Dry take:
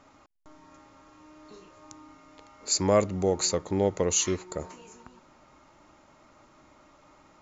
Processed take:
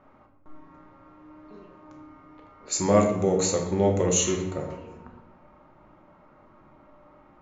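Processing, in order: 2.68–4.70 s: band-stop 4.7 kHz, Q 5.3; level-controlled noise filter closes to 1.6 kHz, open at -22 dBFS; simulated room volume 290 m³, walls mixed, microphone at 1 m

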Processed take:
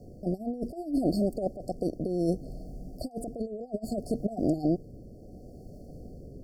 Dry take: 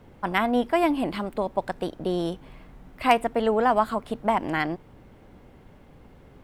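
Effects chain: compressor with a negative ratio -28 dBFS, ratio -0.5; rotary cabinet horn 0.65 Hz; brick-wall FIR band-stop 760–4300 Hz; trim +1.5 dB

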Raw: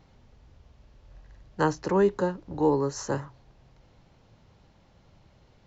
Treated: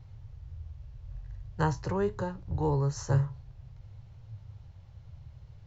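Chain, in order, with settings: resonant low shelf 160 Hz +12.5 dB, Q 3; 1.79–2.48 s: compression 3:1, threshold -23 dBFS, peak gain reduction 4 dB; flange 0.47 Hz, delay 9.4 ms, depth 5.3 ms, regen +73%

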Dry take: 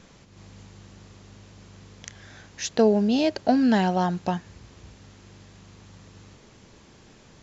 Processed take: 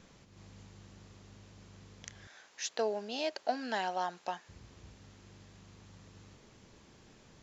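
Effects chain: 2.27–4.49 s: high-pass 610 Hz 12 dB/octave; trim -7 dB

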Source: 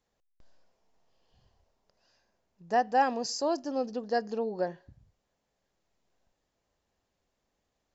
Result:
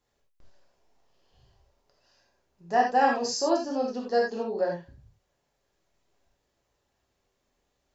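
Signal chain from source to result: gated-style reverb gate 110 ms flat, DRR -2.5 dB

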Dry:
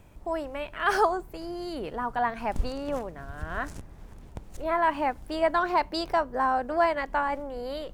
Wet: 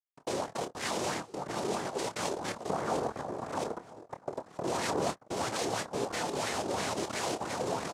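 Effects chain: octave divider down 2 oct, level -2 dB; delay 697 ms -12 dB; peak limiter -20 dBFS, peak gain reduction 9.5 dB; Schmitt trigger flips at -32.5 dBFS; 2.69–5.10 s: bass shelf 480 Hz +10.5 dB; bit crusher 9-bit; delay 936 ms -22 dB; compression, threshold -26 dBFS, peak gain reduction 6.5 dB; noise-vocoded speech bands 2; doubling 27 ms -10 dB; sweeping bell 3 Hz 360–2000 Hz +9 dB; trim -4 dB

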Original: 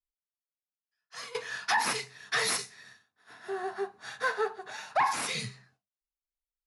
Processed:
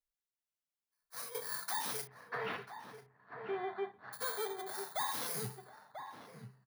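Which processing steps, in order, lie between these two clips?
bit-reversed sample order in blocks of 16 samples; 2.07–4.13 s: low-pass 2.5 kHz 24 dB/octave; peak limiter -27.5 dBFS, peak gain reduction 10 dB; echo from a far wall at 170 m, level -7 dB; trim -2 dB

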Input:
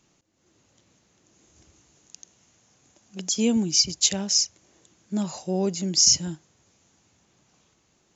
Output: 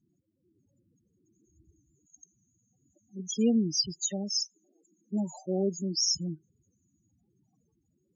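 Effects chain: 3.95–6.03 s: high-pass 180 Hz 24 dB/octave; loudest bins only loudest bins 8; trim -2.5 dB

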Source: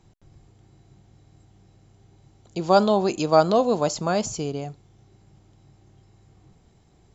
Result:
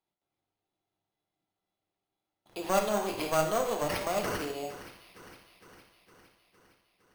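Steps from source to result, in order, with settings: high-pass 690 Hz 12 dB/octave; gate with hold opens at -46 dBFS; peaking EQ 1.8 kHz -14.5 dB 1.1 oct; in parallel at +2 dB: compression, threshold -30 dBFS, peak gain reduction 13 dB; on the sum: one-sided clip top -28.5 dBFS; on a send: feedback echo behind a high-pass 460 ms, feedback 62%, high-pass 2.7 kHz, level -13 dB; on the sum: gated-style reverb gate 230 ms falling, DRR 1.5 dB; careless resampling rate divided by 6×, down none, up hold; trim -5.5 dB

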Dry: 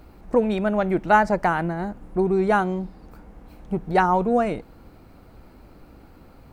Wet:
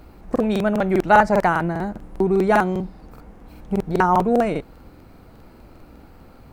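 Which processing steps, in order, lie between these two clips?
crackling interface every 0.20 s, samples 2048, repeat, from 0.31 s; trim +2.5 dB

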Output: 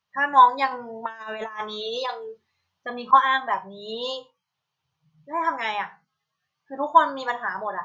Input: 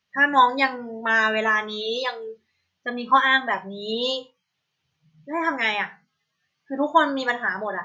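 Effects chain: 0.71–3.13 s: compressor with a negative ratio -26 dBFS, ratio -0.5; graphic EQ 125/250/1000/2000 Hz +4/-6/+9/-4 dB; trim -5 dB

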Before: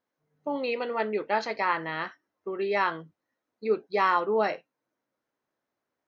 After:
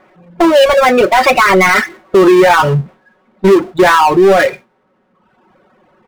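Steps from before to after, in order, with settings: Doppler pass-by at 2.18 s, 47 m/s, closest 8.6 m; low-pass 3 kHz 24 dB/octave; gate with hold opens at -56 dBFS; comb 5.4 ms, depth 83%; compression, threshold -37 dBFS, peak gain reduction 14 dB; power-law waveshaper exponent 0.5; reverb removal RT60 1.2 s; loudness maximiser +33 dB; tape noise reduction on one side only decoder only; trim -1 dB

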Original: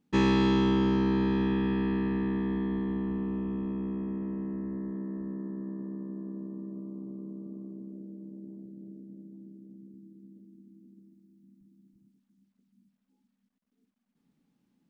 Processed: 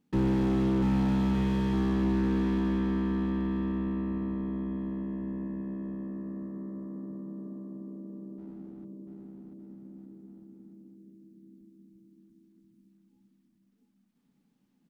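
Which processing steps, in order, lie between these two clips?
8.38–8.85 s: hysteresis with a dead band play -49.5 dBFS; bouncing-ball echo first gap 690 ms, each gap 0.75×, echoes 5; slew-rate limiter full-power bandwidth 18 Hz

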